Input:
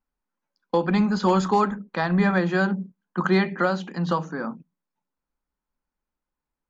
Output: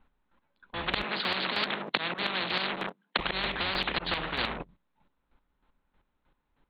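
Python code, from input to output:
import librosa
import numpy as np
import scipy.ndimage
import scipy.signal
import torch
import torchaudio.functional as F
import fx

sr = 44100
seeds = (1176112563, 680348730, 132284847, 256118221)

y = fx.octave_divider(x, sr, octaves=2, level_db=-3.0)
y = fx.auto_swell(y, sr, attack_ms=472.0)
y = np.clip(y, -10.0 ** (-16.5 / 20.0), 10.0 ** (-16.5 / 20.0))
y = fx.leveller(y, sr, passes=3)
y = scipy.signal.sosfilt(scipy.signal.butter(16, 4000.0, 'lowpass', fs=sr, output='sos'), y)
y = fx.chopper(y, sr, hz=3.2, depth_pct=65, duty_pct=25)
y = fx.steep_highpass(y, sr, hz=180.0, slope=36, at=(1.03, 3.19))
y = fx.spectral_comp(y, sr, ratio=10.0)
y = F.gain(torch.from_numpy(y), 1.5).numpy()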